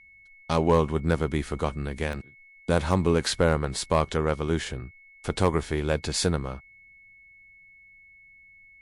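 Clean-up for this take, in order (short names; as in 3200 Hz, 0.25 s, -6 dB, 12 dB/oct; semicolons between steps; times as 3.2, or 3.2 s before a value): clip repair -11.5 dBFS; notch 2200 Hz, Q 30; interpolate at 2.13, 1.3 ms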